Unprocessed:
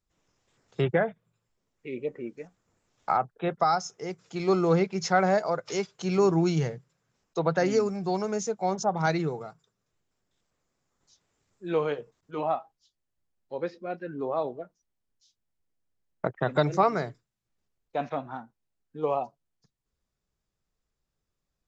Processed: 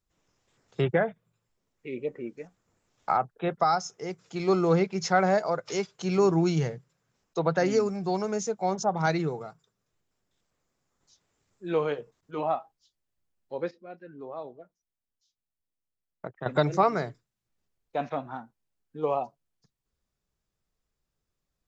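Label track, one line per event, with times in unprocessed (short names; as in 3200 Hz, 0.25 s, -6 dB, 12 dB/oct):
13.710000	16.460000	gain -9.5 dB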